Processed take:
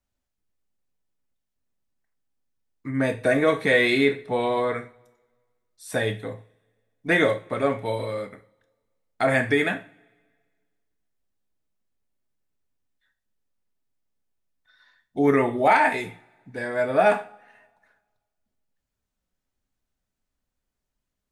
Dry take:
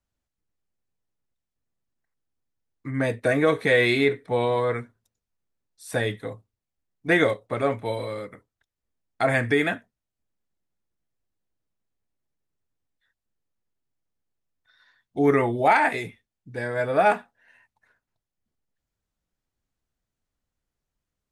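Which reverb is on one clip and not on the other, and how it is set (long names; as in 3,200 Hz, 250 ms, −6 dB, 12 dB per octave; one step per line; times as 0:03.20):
coupled-rooms reverb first 0.36 s, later 1.6 s, from −25 dB, DRR 6.5 dB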